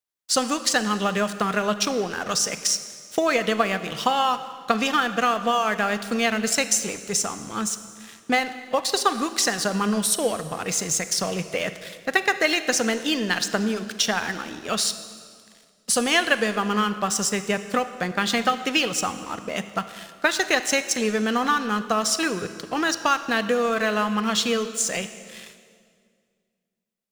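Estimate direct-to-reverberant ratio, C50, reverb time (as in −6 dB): 11.0 dB, 12.0 dB, 2.1 s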